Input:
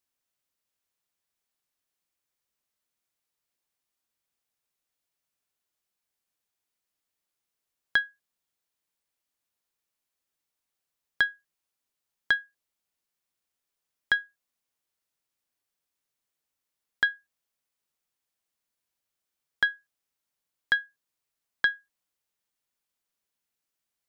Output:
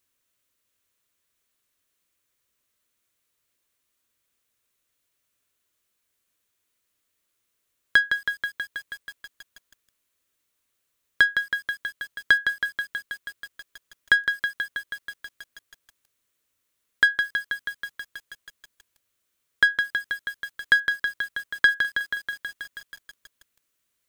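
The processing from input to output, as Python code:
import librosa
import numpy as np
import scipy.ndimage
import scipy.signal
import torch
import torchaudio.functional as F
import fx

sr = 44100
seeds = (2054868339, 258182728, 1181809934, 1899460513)

p1 = fx.graphic_eq_31(x, sr, hz=(100, 160, 800, 5000), db=(4, -7, -11, -4))
p2 = 10.0 ** (-30.0 / 20.0) * np.tanh(p1 / 10.0 ** (-30.0 / 20.0))
p3 = p1 + F.gain(torch.from_numpy(p2), -4.0).numpy()
p4 = fx.echo_crushed(p3, sr, ms=161, feedback_pct=80, bits=8, wet_db=-6.5)
y = F.gain(torch.from_numpy(p4), 5.0).numpy()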